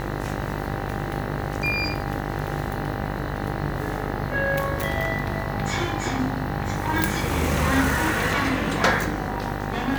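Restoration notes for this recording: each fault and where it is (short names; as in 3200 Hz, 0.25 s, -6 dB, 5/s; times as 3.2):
buzz 50 Hz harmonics 40 -30 dBFS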